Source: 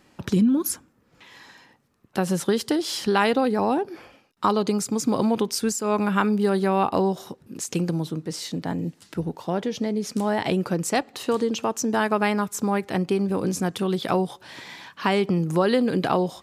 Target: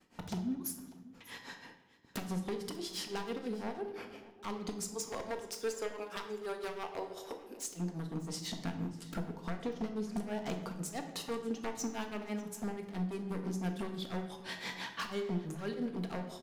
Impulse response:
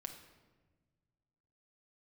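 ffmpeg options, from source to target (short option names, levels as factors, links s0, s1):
-filter_complex "[0:a]asettb=1/sr,asplit=3[s0][s1][s2];[s0]atrim=end=4.944[s3];[s1]atrim=start=4.94:end=7.66,asetpts=PTS-STARTPTS,afade=t=in:d=0.004:c=qsin,afade=t=out:st=2.716:d=0.004:c=qsin,highpass=f=370:w=0.5412,highpass=f=370:w=1.3066[s4];[s2]atrim=start=7.656[s5];[s3][s4]acrossfade=d=0.004:c1=hsin:c2=qsin[s6];[s6][s5]acrossfade=d=0.004:c1=qsin:c2=hsin,agate=range=0.0224:threshold=0.00224:ratio=3:detection=peak,acompressor=threshold=0.02:ratio=16,aeval=exprs='0.0237*(abs(mod(val(0)/0.0237+3,4)-2)-1)':c=same,tremolo=f=6:d=0.93,aecho=1:1:594:0.0944[s7];[1:a]atrim=start_sample=2205,asetrate=57330,aresample=44100[s8];[s7][s8]afir=irnorm=-1:irlink=0,volume=2.82"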